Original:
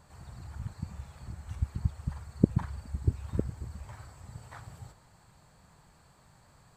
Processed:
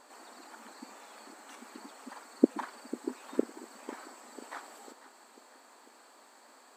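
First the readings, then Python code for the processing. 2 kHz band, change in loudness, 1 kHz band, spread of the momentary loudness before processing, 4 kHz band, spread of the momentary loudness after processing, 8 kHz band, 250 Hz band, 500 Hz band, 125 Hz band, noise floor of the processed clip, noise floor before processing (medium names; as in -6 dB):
+5.5 dB, -2.5 dB, +5.5 dB, 19 LU, no reading, 26 LU, +5.5 dB, +1.0 dB, +5.5 dB, under -25 dB, -59 dBFS, -61 dBFS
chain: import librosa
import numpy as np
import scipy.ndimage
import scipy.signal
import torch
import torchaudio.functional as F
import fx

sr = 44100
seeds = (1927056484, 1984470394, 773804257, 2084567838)

y = fx.brickwall_highpass(x, sr, low_hz=230.0)
y = fx.echo_feedback(y, sr, ms=496, feedback_pct=56, wet_db=-16.0)
y = y * librosa.db_to_amplitude(5.5)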